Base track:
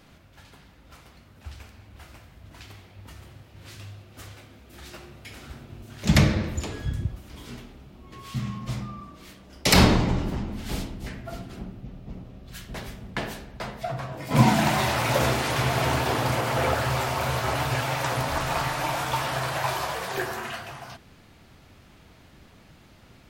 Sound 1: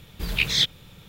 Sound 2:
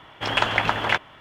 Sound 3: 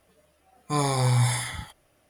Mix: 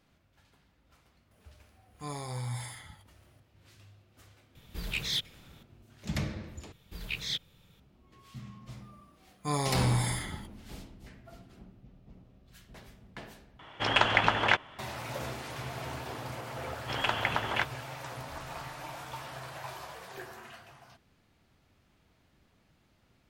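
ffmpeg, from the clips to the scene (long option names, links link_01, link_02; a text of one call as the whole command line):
ffmpeg -i bed.wav -i cue0.wav -i cue1.wav -i cue2.wav -filter_complex "[3:a]asplit=2[link_01][link_02];[1:a]asplit=2[link_03][link_04];[2:a]asplit=2[link_05][link_06];[0:a]volume=-15dB[link_07];[link_01]acompressor=mode=upward:threshold=-42dB:ratio=2.5:attack=3.2:release=140:knee=2.83:detection=peak[link_08];[link_03]asoftclip=type=tanh:threshold=-16.5dB[link_09];[link_05]lowpass=10000[link_10];[link_07]asplit=3[link_11][link_12][link_13];[link_11]atrim=end=6.724[link_14];[link_04]atrim=end=1.08,asetpts=PTS-STARTPTS,volume=-13dB[link_15];[link_12]atrim=start=7.796:end=13.594[link_16];[link_10]atrim=end=1.2,asetpts=PTS-STARTPTS,volume=-3dB[link_17];[link_13]atrim=start=14.786[link_18];[link_08]atrim=end=2.09,asetpts=PTS-STARTPTS,volume=-14.5dB,afade=type=in:duration=0.004:curve=hsin,afade=type=out:start_time=2.086:duration=0.004:curve=hsin,adelay=1310[link_19];[link_09]atrim=end=1.08,asetpts=PTS-STARTPTS,volume=-8dB,afade=type=in:duration=0.004:curve=hsin,afade=type=out:start_time=1.076:duration=0.004:curve=hsin,adelay=4550[link_20];[link_02]atrim=end=2.09,asetpts=PTS-STARTPTS,volume=-6dB,afade=type=in:duration=0.004:curve=hsin,afade=type=out:start_time=2.086:duration=0.004:curve=hsin,adelay=8750[link_21];[link_06]atrim=end=1.2,asetpts=PTS-STARTPTS,volume=-8.5dB,afade=type=in:duration=0.004:curve=hsin,afade=type=out:start_time=1.196:duration=0.004:curve=hsin,adelay=16670[link_22];[link_14][link_15]acrossfade=duration=0.004:curve1=hsin:curve2=hsin[link_23];[link_23][link_16]acrossfade=duration=0.004:curve1=hsin:curve2=hsin[link_24];[link_24][link_17]acrossfade=duration=0.004:curve1=hsin:curve2=hsin[link_25];[link_25][link_18]acrossfade=duration=0.004:curve1=hsin:curve2=hsin[link_26];[link_26][link_19][link_20][link_21][link_22]amix=inputs=5:normalize=0" out.wav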